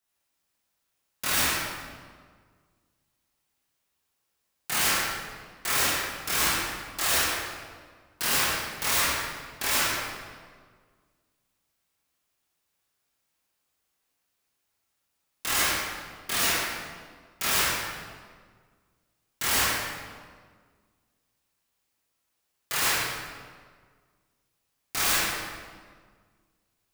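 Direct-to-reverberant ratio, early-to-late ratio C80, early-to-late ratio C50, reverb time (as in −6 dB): −8.0 dB, 0.5 dB, −1.5 dB, 1.7 s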